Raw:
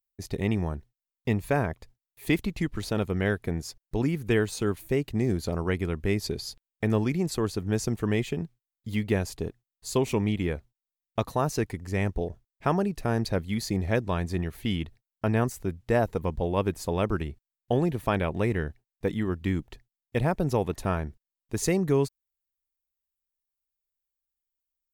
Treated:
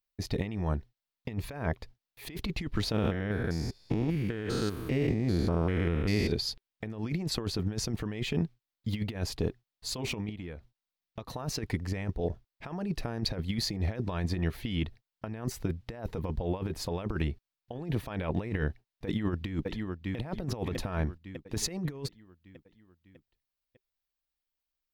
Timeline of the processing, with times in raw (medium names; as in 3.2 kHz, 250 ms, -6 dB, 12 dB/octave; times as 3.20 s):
2.92–6.32 s: spectrogram pixelated in time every 200 ms
10.29–11.30 s: compression 8:1, threshold -40 dBFS
19.05–20.16 s: echo throw 600 ms, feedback 55%, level -11 dB
whole clip: resonant high shelf 5.9 kHz -6.5 dB, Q 1.5; band-stop 390 Hz, Q 12; compressor with a negative ratio -30 dBFS, ratio -0.5